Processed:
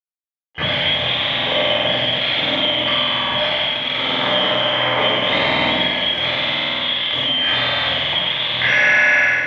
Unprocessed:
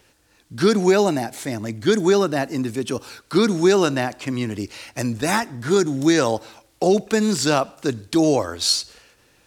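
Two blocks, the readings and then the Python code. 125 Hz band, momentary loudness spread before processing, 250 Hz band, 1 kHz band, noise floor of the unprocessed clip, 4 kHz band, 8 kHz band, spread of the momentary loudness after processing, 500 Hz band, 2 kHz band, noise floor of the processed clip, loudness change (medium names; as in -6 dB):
-3.5 dB, 11 LU, -9.0 dB, +3.5 dB, -60 dBFS, +14.0 dB, under -15 dB, 5 LU, -3.5 dB, +13.5 dB, under -85 dBFS, +4.5 dB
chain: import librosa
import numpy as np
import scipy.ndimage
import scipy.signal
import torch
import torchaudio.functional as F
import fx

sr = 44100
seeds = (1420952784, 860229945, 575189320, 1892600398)

p1 = fx.band_shuffle(x, sr, order='2413')
p2 = fx.env_lowpass(p1, sr, base_hz=1200.0, full_db=-12.5)
p3 = fx.level_steps(p2, sr, step_db=20)
p4 = p2 + F.gain(torch.from_numpy(p3), -1.0).numpy()
p5 = np.clip(10.0 ** (11.5 / 20.0) * p4, -1.0, 1.0) / 10.0 ** (11.5 / 20.0)
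p6 = fx.doubler(p5, sr, ms=23.0, db=-7.5)
p7 = p6 + fx.room_flutter(p6, sr, wall_m=8.3, rt60_s=1.4, dry=0)
p8 = fx.fuzz(p7, sr, gain_db=39.0, gate_db=-39.0)
p9 = fx.cabinet(p8, sr, low_hz=170.0, low_slope=12, high_hz=2700.0, hz=(210.0, 390.0, 590.0, 1300.0, 2000.0), db=(-6, -10, 9, -4, 7))
p10 = fx.room_shoebox(p9, sr, seeds[0], volume_m3=1400.0, walls='mixed', distance_m=3.9)
y = F.gain(torch.from_numpy(p10), -4.5).numpy()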